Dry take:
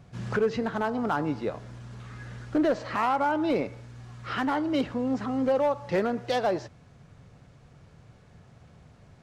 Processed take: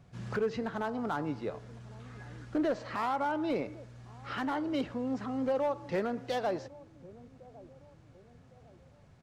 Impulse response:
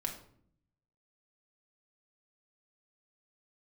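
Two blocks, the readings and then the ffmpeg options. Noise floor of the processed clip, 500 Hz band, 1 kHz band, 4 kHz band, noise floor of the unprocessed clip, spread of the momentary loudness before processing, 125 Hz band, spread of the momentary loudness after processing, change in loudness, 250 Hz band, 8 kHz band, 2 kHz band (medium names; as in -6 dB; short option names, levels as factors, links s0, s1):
-59 dBFS, -6.0 dB, -6.0 dB, -6.0 dB, -55 dBFS, 17 LU, -6.0 dB, 20 LU, -6.0 dB, -6.0 dB, no reading, -6.5 dB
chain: -filter_complex "[0:a]acrossover=split=900[s0][s1];[s0]aecho=1:1:1107|2214|3321:0.112|0.0438|0.0171[s2];[s1]volume=18.8,asoftclip=hard,volume=0.0531[s3];[s2][s3]amix=inputs=2:normalize=0,volume=0.501"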